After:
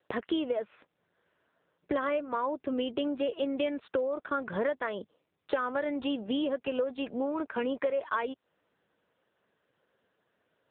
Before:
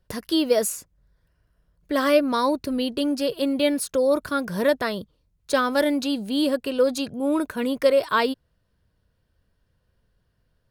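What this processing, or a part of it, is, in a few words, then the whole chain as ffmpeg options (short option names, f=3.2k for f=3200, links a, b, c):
voicemail: -af "highpass=350,lowpass=2.9k,acompressor=threshold=-34dB:ratio=8,volume=7dB" -ar 8000 -c:a libopencore_amrnb -b:a 6700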